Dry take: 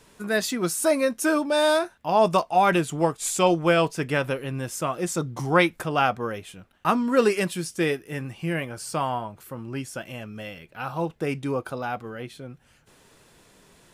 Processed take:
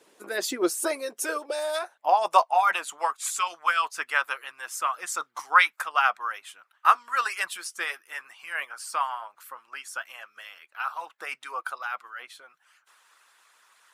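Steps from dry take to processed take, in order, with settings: high-pass sweep 380 Hz -> 1200 Hz, 0.89–3.17; harmonic-percussive split harmonic -16 dB

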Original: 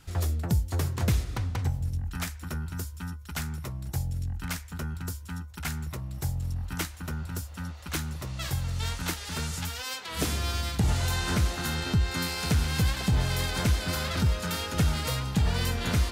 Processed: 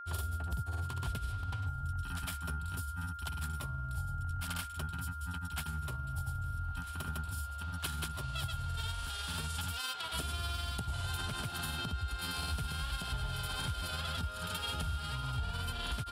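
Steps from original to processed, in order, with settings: grains, pitch spread up and down by 0 st; compressor, threshold -34 dBFS, peak gain reduction 12.5 dB; thirty-one-band EQ 200 Hz -10 dB, 315 Hz -9 dB, 500 Hz -9 dB, 2000 Hz -9 dB, 3150 Hz +6 dB, 6300 Hz -9 dB, 10000 Hz +6 dB; whine 1400 Hz -43 dBFS

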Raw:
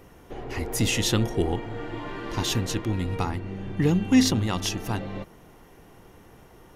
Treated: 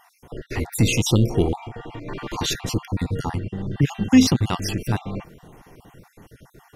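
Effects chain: random spectral dropouts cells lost 41%; bell 140 Hz +5.5 dB 0.81 oct; 1.55–2.08 compressor, threshold -35 dBFS, peak gain reduction 5.5 dB; gain +4 dB

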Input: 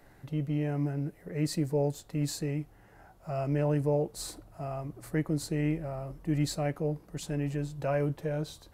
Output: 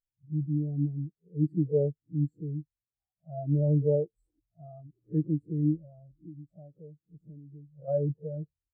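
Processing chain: spectral swells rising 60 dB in 0.30 s; bell 4400 Hz -14 dB 2.1 oct; 5.82–7.88 compressor 12:1, threshold -33 dBFS, peak gain reduction 10.5 dB; spectral expander 2.5:1; gain +2 dB

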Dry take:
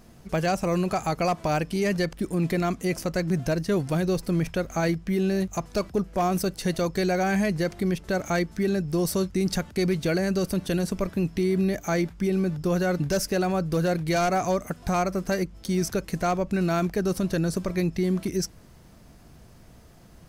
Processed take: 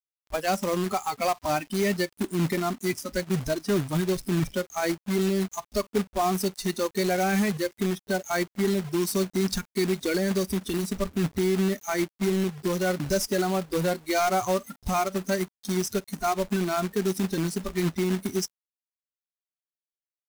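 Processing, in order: spectral noise reduction 26 dB; companded quantiser 4-bit

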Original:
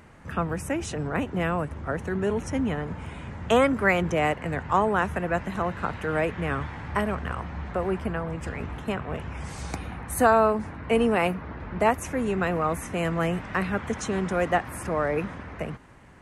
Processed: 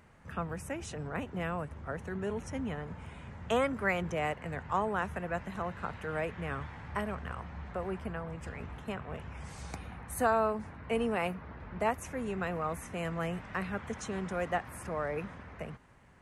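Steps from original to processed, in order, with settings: bell 310 Hz -4.5 dB 0.47 oct; gain -8.5 dB

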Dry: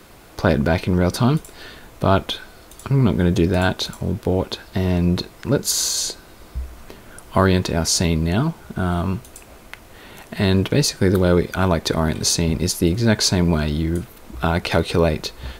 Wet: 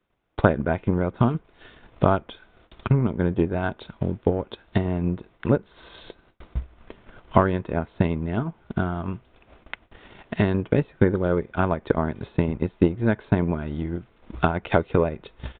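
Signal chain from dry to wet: gate with hold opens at -33 dBFS; treble ducked by the level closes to 2000 Hz, closed at -16 dBFS; transient shaper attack +11 dB, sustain -6 dB; downsampling 8000 Hz; gain -8.5 dB

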